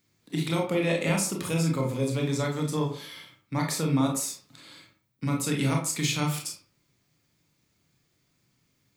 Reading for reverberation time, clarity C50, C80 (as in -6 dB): 0.45 s, 6.5 dB, 11.5 dB